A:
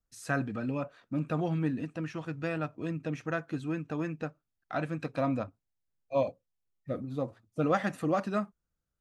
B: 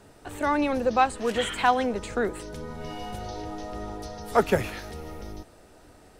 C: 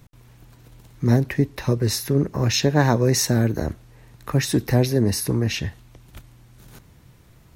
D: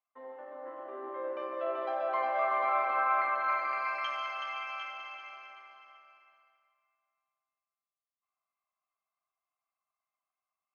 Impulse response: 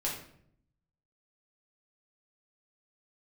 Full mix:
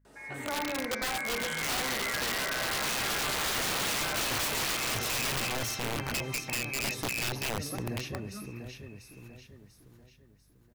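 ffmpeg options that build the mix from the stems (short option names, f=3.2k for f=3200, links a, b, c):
-filter_complex "[0:a]equalizer=f=120:w=0.39:g=5.5,asplit=2[a][b];[b]adelay=4.7,afreqshift=-0.4[c];[a][c]amix=inputs=2:normalize=1,volume=-17dB,asplit=2[d][e];[e]volume=-14.5dB[f];[1:a]highpass=180,adelay=50,volume=-5.5dB,asplit=2[g][h];[h]volume=-11.5dB[i];[2:a]adelay=1800,volume=-9.5dB,asplit=3[j][k][l];[k]volume=-22dB[m];[l]volume=-4.5dB[n];[3:a]crystalizer=i=6.5:c=0,volume=0dB,asplit=3[o][p][q];[p]volume=-20dB[r];[q]volume=-8dB[s];[j][o]amix=inputs=2:normalize=0,lowpass=f=2.3k:t=q:w=0.5098,lowpass=f=2.3k:t=q:w=0.6013,lowpass=f=2.3k:t=q:w=0.9,lowpass=f=2.3k:t=q:w=2.563,afreqshift=-2700,acompressor=threshold=-30dB:ratio=6,volume=0dB[t];[d][g]amix=inputs=2:normalize=0,acompressor=threshold=-37dB:ratio=8,volume=0dB[u];[4:a]atrim=start_sample=2205[v];[f][i][m][r]amix=inputs=4:normalize=0[w];[w][v]afir=irnorm=-1:irlink=0[x];[n][s]amix=inputs=2:normalize=0,aecho=0:1:693|1386|2079|2772|3465|4158:1|0.42|0.176|0.0741|0.0311|0.0131[y];[t][u][x][y]amix=inputs=4:normalize=0,aeval=exprs='val(0)+0.000501*(sin(2*PI*50*n/s)+sin(2*PI*2*50*n/s)/2+sin(2*PI*3*50*n/s)/3+sin(2*PI*4*50*n/s)/4+sin(2*PI*5*50*n/s)/5)':c=same,aeval=exprs='(mod(18.8*val(0)+1,2)-1)/18.8':c=same"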